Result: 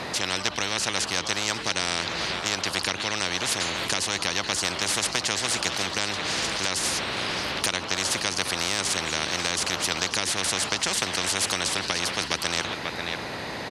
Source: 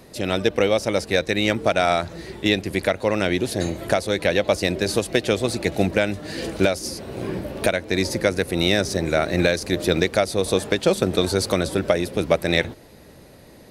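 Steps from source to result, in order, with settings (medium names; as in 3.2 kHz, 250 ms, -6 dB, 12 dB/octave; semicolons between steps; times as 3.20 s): band-pass 160–4300 Hz; on a send: delay 539 ms -21.5 dB; on the sum: spectrum-flattening compressor 10:1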